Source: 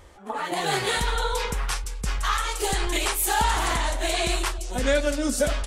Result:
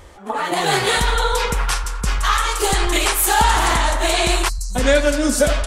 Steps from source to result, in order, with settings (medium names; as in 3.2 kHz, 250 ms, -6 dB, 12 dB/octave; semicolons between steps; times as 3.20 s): band-passed feedback delay 86 ms, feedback 84%, band-pass 1.2 kHz, level -11.5 dB; time-frequency box 4.49–4.75 s, 210–3900 Hz -28 dB; trim +7 dB